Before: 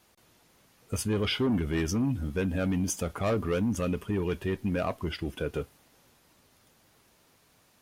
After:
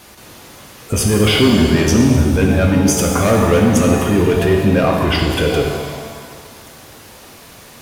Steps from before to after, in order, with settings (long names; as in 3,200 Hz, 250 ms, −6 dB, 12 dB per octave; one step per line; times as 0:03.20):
boost into a limiter +29 dB
reverb with rising layers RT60 1.8 s, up +7 semitones, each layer −8 dB, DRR 0.5 dB
level −8 dB